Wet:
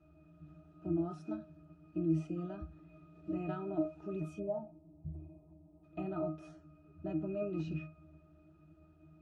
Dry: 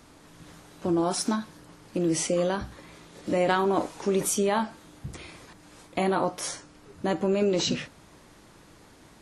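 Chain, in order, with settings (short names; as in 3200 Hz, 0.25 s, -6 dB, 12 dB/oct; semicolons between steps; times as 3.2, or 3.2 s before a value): spectral gain 4.39–5.83, 1100–8100 Hz -23 dB; octave resonator D#, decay 0.29 s; gain +4.5 dB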